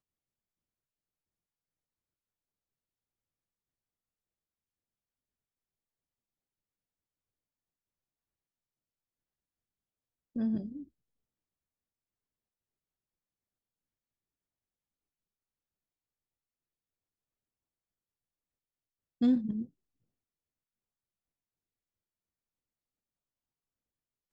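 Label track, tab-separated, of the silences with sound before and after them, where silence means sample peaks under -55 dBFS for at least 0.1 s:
10.880000	19.210000	silence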